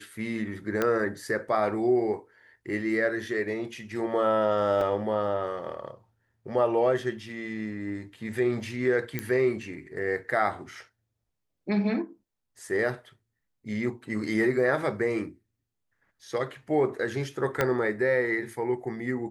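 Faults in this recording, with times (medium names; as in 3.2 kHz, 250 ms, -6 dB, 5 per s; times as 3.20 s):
0.82 s: pop -12 dBFS
4.81 s: dropout 2.8 ms
9.19 s: pop -15 dBFS
17.61 s: pop -10 dBFS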